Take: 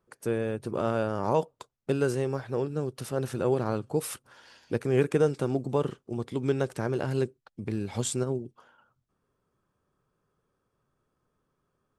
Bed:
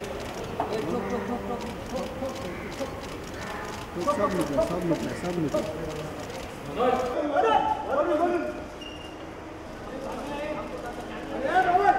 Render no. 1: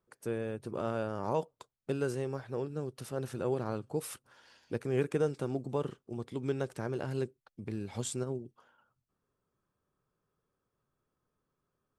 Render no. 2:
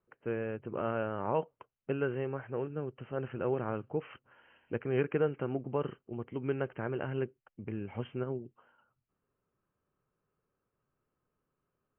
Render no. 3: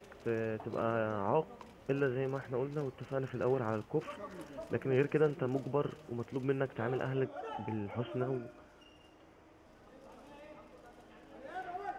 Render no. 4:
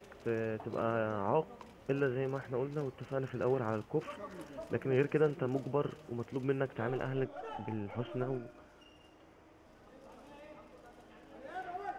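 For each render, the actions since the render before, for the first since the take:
trim -6.5 dB
Chebyshev low-pass 3.1 kHz, order 10; dynamic bell 1.7 kHz, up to +4 dB, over -49 dBFS, Q 0.72
add bed -21 dB
6.89–8.55 s: partial rectifier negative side -3 dB

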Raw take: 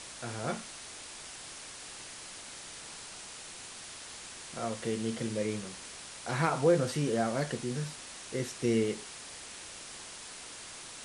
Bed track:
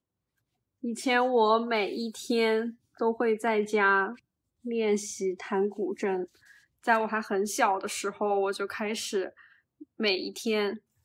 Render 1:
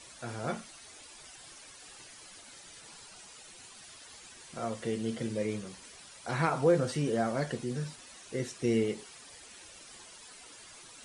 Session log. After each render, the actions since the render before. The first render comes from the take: noise reduction 11 dB, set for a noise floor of -47 dBFS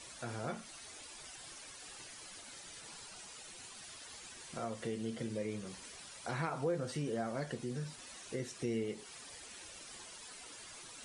compression 2:1, threshold -40 dBFS, peak gain reduction 11 dB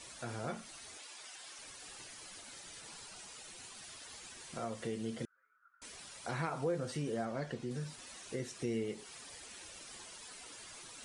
0.98–1.59 s: frequency weighting A; 5.25–5.82 s: Butterworth band-pass 1.4 kHz, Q 7.8; 7.25–7.71 s: distance through air 71 m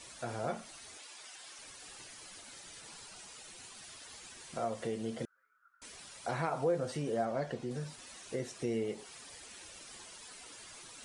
dynamic bell 660 Hz, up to +7 dB, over -55 dBFS, Q 1.3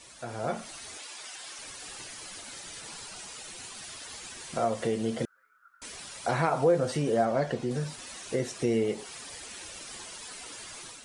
level rider gain up to 8 dB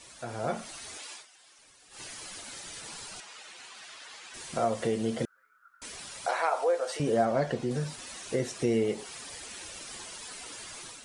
1.13–2.03 s: dip -15 dB, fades 0.13 s; 3.20–4.34 s: band-pass filter 1.7 kHz, Q 0.54; 6.26–7.00 s: high-pass 510 Hz 24 dB/octave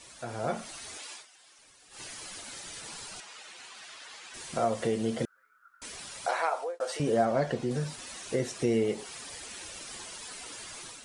6.31–6.80 s: fade out equal-power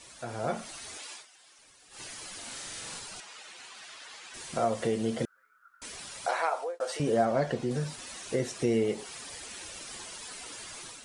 2.37–2.99 s: flutter echo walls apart 7.2 m, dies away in 0.61 s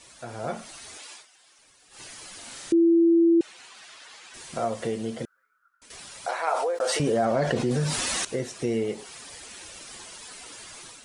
2.72–3.41 s: bleep 335 Hz -15 dBFS; 4.88–5.90 s: fade out, to -11 dB; 6.47–8.25 s: level flattener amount 70%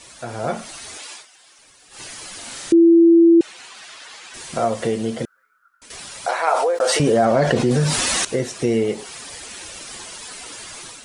trim +7.5 dB

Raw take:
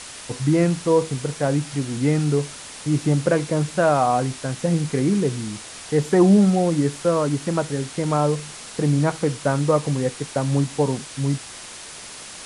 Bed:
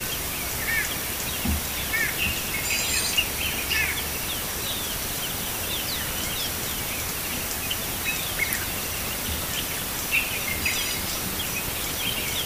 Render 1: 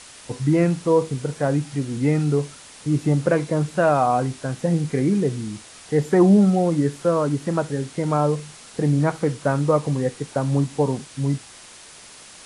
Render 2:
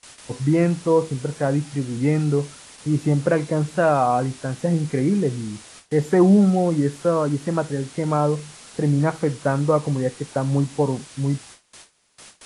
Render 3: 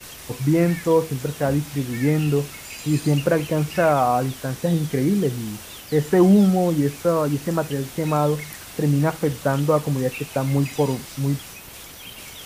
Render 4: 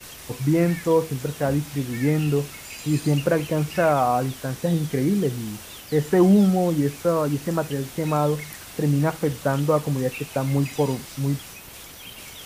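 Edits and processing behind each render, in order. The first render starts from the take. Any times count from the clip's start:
noise print and reduce 6 dB
gate with hold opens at -33 dBFS
add bed -12 dB
trim -1.5 dB

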